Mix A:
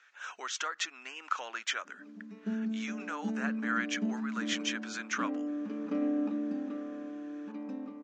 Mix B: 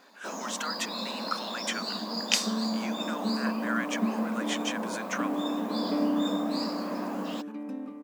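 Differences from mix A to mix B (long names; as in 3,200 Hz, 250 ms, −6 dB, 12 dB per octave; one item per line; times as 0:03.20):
first sound: unmuted
second sound +3.0 dB
master: remove Butterworth low-pass 7,000 Hz 48 dB per octave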